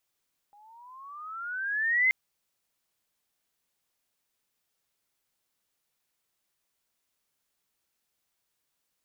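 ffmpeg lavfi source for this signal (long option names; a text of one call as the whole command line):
ffmpeg -f lavfi -i "aevalsrc='pow(10,(-19+34.5*(t/1.58-1))/20)*sin(2*PI*809*1.58/(16.5*log(2)/12)*(exp(16.5*log(2)/12*t/1.58)-1))':duration=1.58:sample_rate=44100" out.wav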